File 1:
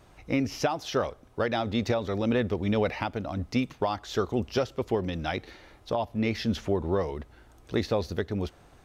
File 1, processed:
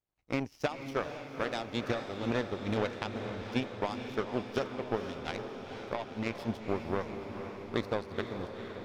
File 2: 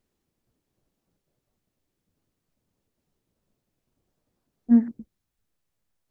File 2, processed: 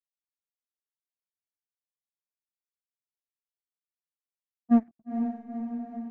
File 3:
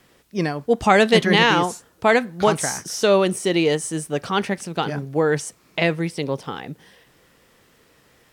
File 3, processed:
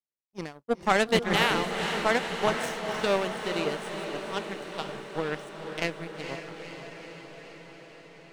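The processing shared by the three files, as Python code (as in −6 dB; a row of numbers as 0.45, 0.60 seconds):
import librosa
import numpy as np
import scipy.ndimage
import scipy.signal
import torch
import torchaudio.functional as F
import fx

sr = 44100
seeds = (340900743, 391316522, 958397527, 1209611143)

y = fx.power_curve(x, sr, exponent=2.0)
y = fx.echo_diffused(y, sr, ms=477, feedback_pct=70, wet_db=-8.0)
y = 10.0 ** (-9.0 / 20.0) * np.tanh(y / 10.0 ** (-9.0 / 20.0))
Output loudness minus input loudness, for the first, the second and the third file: −6.5, −8.0, −8.5 LU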